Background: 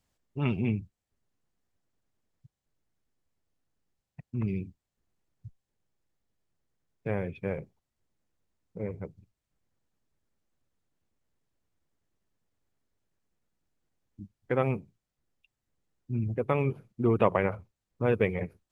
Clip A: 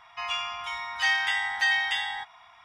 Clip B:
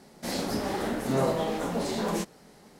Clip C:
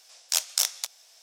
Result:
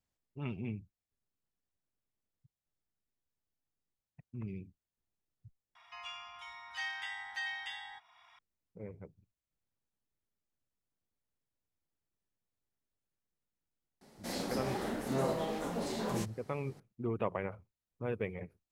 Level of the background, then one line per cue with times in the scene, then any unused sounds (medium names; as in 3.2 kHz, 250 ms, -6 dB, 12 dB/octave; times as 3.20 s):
background -11 dB
5.75 s: replace with A -15 dB + tape noise reduction on one side only encoder only
14.01 s: add B -7 dB
not used: C